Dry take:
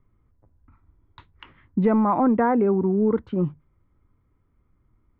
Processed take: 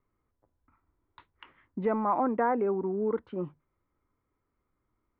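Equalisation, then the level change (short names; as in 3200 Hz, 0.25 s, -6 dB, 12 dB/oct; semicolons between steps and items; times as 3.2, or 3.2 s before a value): tone controls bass -13 dB, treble -9 dB; -4.5 dB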